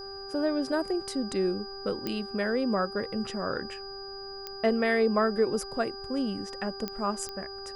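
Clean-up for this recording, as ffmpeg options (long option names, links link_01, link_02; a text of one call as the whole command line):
ffmpeg -i in.wav -af "adeclick=threshold=4,bandreject=frequency=392.8:width_type=h:width=4,bandreject=frequency=785.6:width_type=h:width=4,bandreject=frequency=1178.4:width_type=h:width=4,bandreject=frequency=1571.2:width_type=h:width=4,bandreject=frequency=4900:width=30,agate=range=-21dB:threshold=-33dB" out.wav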